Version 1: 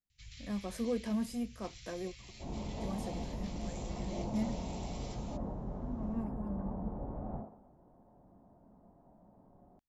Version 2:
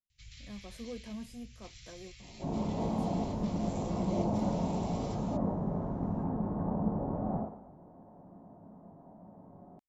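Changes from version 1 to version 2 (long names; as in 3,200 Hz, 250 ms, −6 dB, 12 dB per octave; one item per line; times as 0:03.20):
speech −8.5 dB
second sound: send +10.0 dB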